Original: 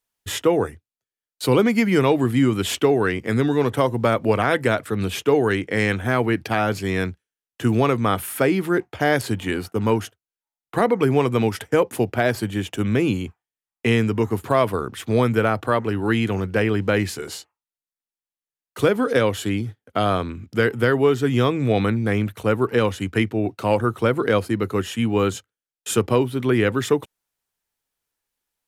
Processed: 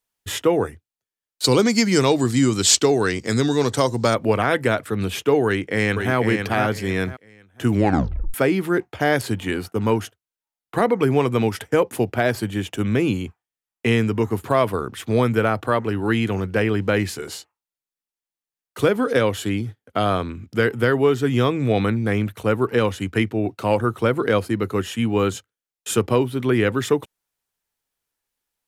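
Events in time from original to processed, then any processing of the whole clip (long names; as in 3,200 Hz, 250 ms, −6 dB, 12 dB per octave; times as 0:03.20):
0:01.44–0:04.15: flat-topped bell 5,700 Hz +15.5 dB 1.3 octaves
0:05.46–0:06.16: delay throw 500 ms, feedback 25%, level −5 dB
0:07.70: tape stop 0.64 s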